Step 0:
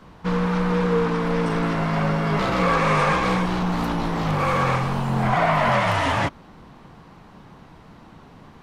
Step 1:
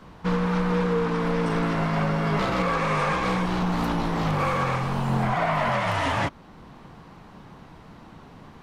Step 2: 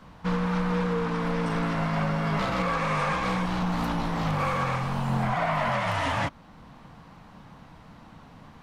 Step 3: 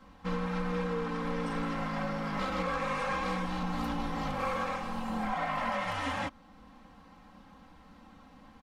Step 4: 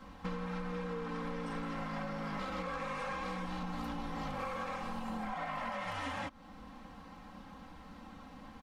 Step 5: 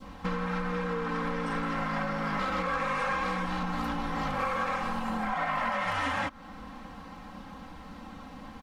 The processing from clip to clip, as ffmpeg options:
-af "alimiter=limit=-14.5dB:level=0:latency=1:release=491"
-af "equalizer=f=380:w=3.7:g=-9,volume=-2dB"
-af "aecho=1:1:3.8:0.96,volume=-8.5dB"
-af "acompressor=threshold=-40dB:ratio=6,volume=3.5dB"
-af "adynamicequalizer=threshold=0.00224:dfrequency=1500:dqfactor=1.1:tfrequency=1500:tqfactor=1.1:attack=5:release=100:ratio=0.375:range=2.5:mode=boostabove:tftype=bell,volume=6.5dB"

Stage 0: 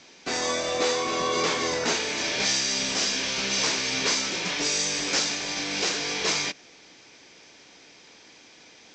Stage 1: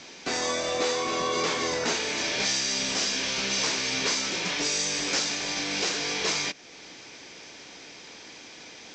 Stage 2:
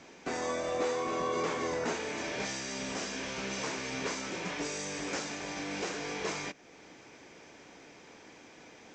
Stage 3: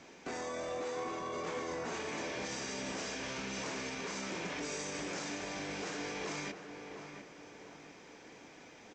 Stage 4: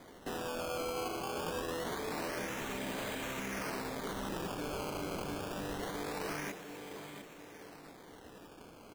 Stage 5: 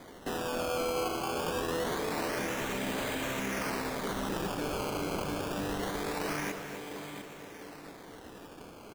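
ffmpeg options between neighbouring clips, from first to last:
-af "acompressor=threshold=-44dB:ratio=1.5,volume=6dB"
-af "equalizer=f=4.4k:t=o:w=1.7:g=-13,volume=-3dB"
-filter_complex "[0:a]alimiter=level_in=5.5dB:limit=-24dB:level=0:latency=1:release=22,volume=-5.5dB,asplit=2[a][b];[b]adelay=700,lowpass=f=2k:p=1,volume=-7dB,asplit=2[c][d];[d]adelay=700,lowpass=f=2k:p=1,volume=0.41,asplit=2[e][f];[f]adelay=700,lowpass=f=2k:p=1,volume=0.41,asplit=2[g][h];[h]adelay=700,lowpass=f=2k:p=1,volume=0.41,asplit=2[i][j];[j]adelay=700,lowpass=f=2k:p=1,volume=0.41[k];[c][e][g][i][k]amix=inputs=5:normalize=0[l];[a][l]amix=inputs=2:normalize=0,volume=-2dB"
-af "acrusher=samples=16:mix=1:aa=0.000001:lfo=1:lforange=16:lforate=0.25,volume=1dB"
-filter_complex "[0:a]asplit=2[a][b];[b]adelay=262.4,volume=-9dB,highshelf=f=4k:g=-5.9[c];[a][c]amix=inputs=2:normalize=0,volume=4.5dB"

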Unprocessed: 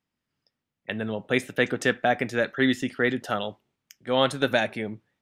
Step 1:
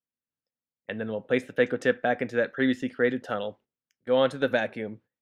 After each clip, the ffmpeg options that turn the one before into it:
-af "lowpass=f=3.8k:p=1,agate=range=-14dB:threshold=-49dB:ratio=16:detection=peak,equalizer=f=250:t=o:w=0.33:g=4,equalizer=f=500:t=o:w=0.33:g=9,equalizer=f=1.6k:t=o:w=0.33:g=4,volume=-5dB"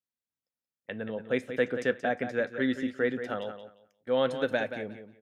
-af "aecho=1:1:178|356|534:0.316|0.0601|0.0114,volume=-4dB"

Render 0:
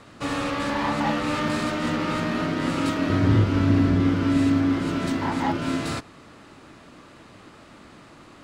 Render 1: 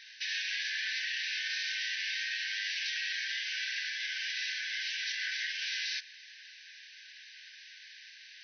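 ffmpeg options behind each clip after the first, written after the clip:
-af "afftfilt=real='re*between(b*sr/4096,1500,6200)':imag='im*between(b*sr/4096,1500,6200)':win_size=4096:overlap=0.75,highshelf=f=3.4k:g=10.5,alimiter=level_in=2dB:limit=-24dB:level=0:latency=1:release=42,volume=-2dB"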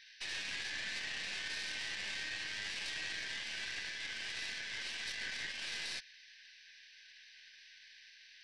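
-af "aeval=exprs='0.0531*(cos(1*acos(clip(val(0)/0.0531,-1,1)))-cos(1*PI/2))+0.0188*(cos(2*acos(clip(val(0)/0.0531,-1,1)))-cos(2*PI/2))':c=same,volume=-6.5dB"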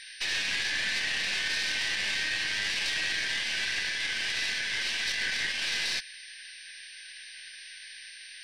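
-filter_complex "[0:a]asplit=2[a][b];[b]asoftclip=type=tanh:threshold=-40dB,volume=-5dB[c];[a][c]amix=inputs=2:normalize=0,aeval=exprs='val(0)+0.000891*sin(2*PI*8800*n/s)':c=same,volume=8.5dB"

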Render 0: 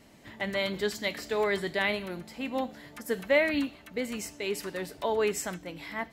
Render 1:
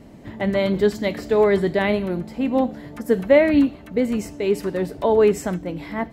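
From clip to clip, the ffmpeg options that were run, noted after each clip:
-af "tiltshelf=f=970:g=8,volume=7dB"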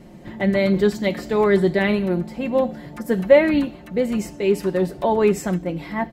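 -af "aecho=1:1:5.6:0.56"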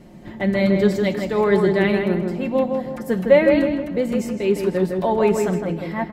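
-filter_complex "[0:a]asplit=2[a][b];[b]adelay=159,lowpass=f=2.3k:p=1,volume=-4dB,asplit=2[c][d];[d]adelay=159,lowpass=f=2.3k:p=1,volume=0.43,asplit=2[e][f];[f]adelay=159,lowpass=f=2.3k:p=1,volume=0.43,asplit=2[g][h];[h]adelay=159,lowpass=f=2.3k:p=1,volume=0.43,asplit=2[i][j];[j]adelay=159,lowpass=f=2.3k:p=1,volume=0.43[k];[a][c][e][g][i][k]amix=inputs=6:normalize=0,volume=-1dB"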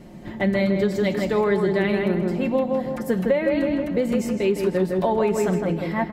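-af "acompressor=threshold=-18dB:ratio=12,volume=1.5dB"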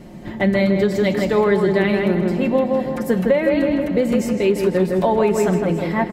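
-af "aecho=1:1:376|752|1128|1504|1880|2256:0.133|0.08|0.048|0.0288|0.0173|0.0104,volume=4dB"

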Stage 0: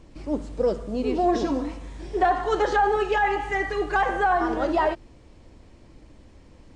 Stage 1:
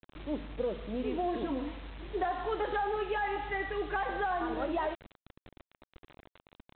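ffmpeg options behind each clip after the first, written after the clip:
-af "acompressor=threshold=-22dB:ratio=4,aresample=8000,acrusher=bits=6:mix=0:aa=0.000001,aresample=44100,volume=-7dB"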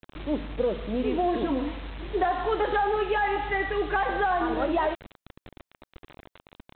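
-af "acontrast=85"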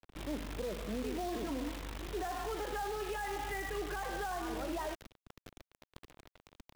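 -filter_complex "[0:a]acrossover=split=160[a][b];[b]alimiter=level_in=1dB:limit=-24dB:level=0:latency=1:release=67,volume=-1dB[c];[a][c]amix=inputs=2:normalize=0,acrusher=bits=7:dc=4:mix=0:aa=0.000001,volume=-7dB"

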